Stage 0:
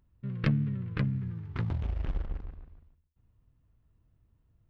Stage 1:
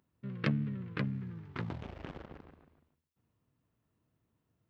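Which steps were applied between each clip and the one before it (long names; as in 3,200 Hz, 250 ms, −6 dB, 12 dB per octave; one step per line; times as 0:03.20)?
high-pass filter 190 Hz 12 dB per octave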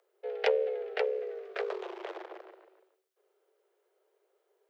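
frequency shifter +300 Hz
level +4 dB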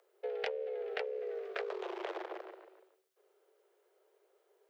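downward compressor 10 to 1, threshold −37 dBFS, peak gain reduction 16 dB
level +2.5 dB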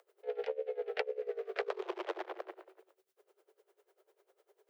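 tremolo with a sine in dB 10 Hz, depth 20 dB
level +6 dB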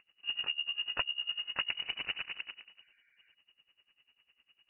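healed spectral selection 0:02.81–0:03.32, 830–1,900 Hz before
voice inversion scrambler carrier 3,300 Hz
level +1.5 dB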